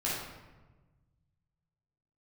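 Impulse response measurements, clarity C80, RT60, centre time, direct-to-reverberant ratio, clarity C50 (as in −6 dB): 3.0 dB, 1.2 s, 75 ms, −7.5 dB, −1.0 dB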